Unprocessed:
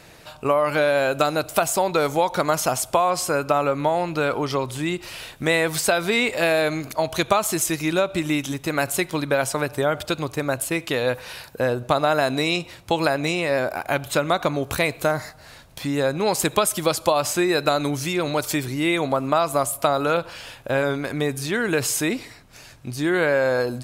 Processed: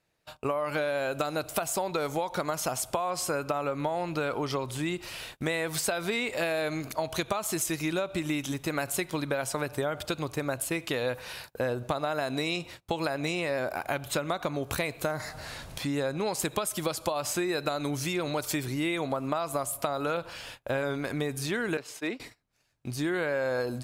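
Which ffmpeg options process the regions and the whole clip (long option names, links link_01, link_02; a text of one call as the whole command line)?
ffmpeg -i in.wav -filter_complex "[0:a]asettb=1/sr,asplit=3[link_01][link_02][link_03];[link_01]atrim=end=15.204[link_04];[link_02]atrim=start=15.2:end=16.4,asetpts=PTS-STARTPTS,afade=type=in:duration=0.004:curve=qsin,afade=type=out:start_time=1.196:duration=0.004:curve=qsin,equalizer=frequency=14000:width=4.7:gain=-10.5,acompressor=mode=upward:threshold=-26dB:ratio=2.5:attack=3.2:release=140:knee=2.83:detection=peak[link_05];[link_03]atrim=start=16.396[link_06];[link_04][link_05]acrossfade=duration=0.004:curve1=hsin:curve2=qsin[link_07];[link_07][link_06]acrossfade=duration=0.004:curve1=qsin:curve2=hsin,asettb=1/sr,asplit=3[link_08][link_09][link_10];[link_08]atrim=end=21.774[link_11];[link_09]atrim=start=21.77:end=22.2,asetpts=PTS-STARTPTS,afade=type=in:duration=0.004:curve=qsin,afade=type=out:start_time=0.426:duration=0.004:curve=qsin,agate=range=-33dB:threshold=-19dB:ratio=3:release=100:detection=peak,acrossover=split=220 4700:gain=0.224 1 0.224[link_12][link_13][link_14];[link_12][link_13][link_14]amix=inputs=3:normalize=0,asoftclip=type=hard:threshold=-19.5dB[link_15];[link_10]atrim=start=22.196[link_16];[link_11][link_15]acrossfade=duration=0.004:curve1=hsin:curve2=qsin[link_17];[link_17][link_16]acrossfade=duration=0.004:curve1=qsin:curve2=hsin,agate=range=-25dB:threshold=-40dB:ratio=16:detection=peak,acompressor=threshold=-22dB:ratio=6,volume=-4dB" out.wav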